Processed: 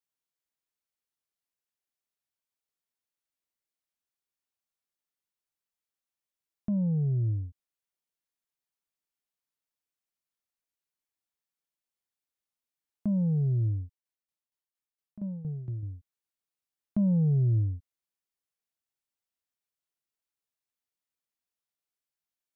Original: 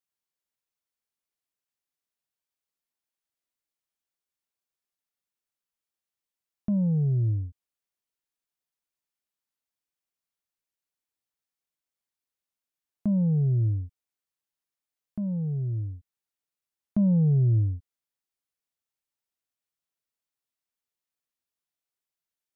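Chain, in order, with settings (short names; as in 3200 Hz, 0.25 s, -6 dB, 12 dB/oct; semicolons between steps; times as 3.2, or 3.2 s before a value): 13.82–15.83 tremolo saw down 4.3 Hz, depth 80%; gain -3 dB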